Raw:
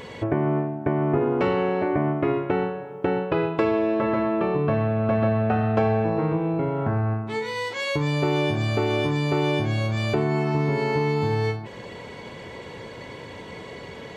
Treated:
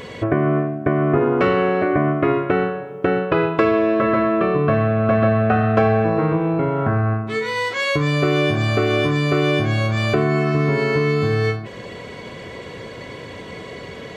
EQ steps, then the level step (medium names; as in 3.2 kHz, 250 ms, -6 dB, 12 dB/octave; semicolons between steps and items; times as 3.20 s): dynamic bell 1.4 kHz, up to +5 dB, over -40 dBFS, Q 1.1; Butterworth band-stop 880 Hz, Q 7.1; +4.5 dB